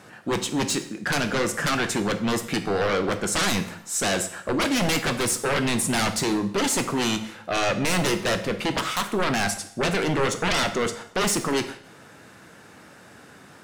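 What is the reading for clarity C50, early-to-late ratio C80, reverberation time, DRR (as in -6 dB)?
12.0 dB, 15.0 dB, 0.65 s, 8.0 dB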